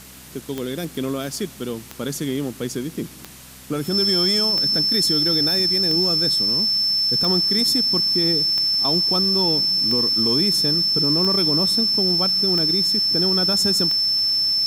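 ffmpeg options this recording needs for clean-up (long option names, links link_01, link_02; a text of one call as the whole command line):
ffmpeg -i in.wav -af "adeclick=threshold=4,bandreject=frequency=64:width_type=h:width=4,bandreject=frequency=128:width_type=h:width=4,bandreject=frequency=192:width_type=h:width=4,bandreject=frequency=256:width_type=h:width=4,bandreject=frequency=5300:width=30,afwtdn=0.0079" out.wav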